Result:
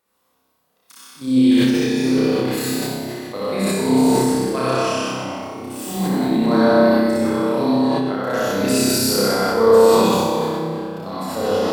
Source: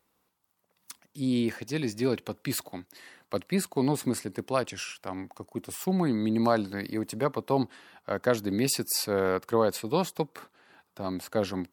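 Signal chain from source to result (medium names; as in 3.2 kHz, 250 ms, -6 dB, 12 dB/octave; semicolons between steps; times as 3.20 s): high-pass 260 Hz 6 dB/octave; tremolo saw down 6.6 Hz, depth 55%; flutter echo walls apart 5.3 m, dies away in 1.2 s; reverberation RT60 2.1 s, pre-delay 55 ms, DRR -7.5 dB; decay stretcher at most 21 dB/s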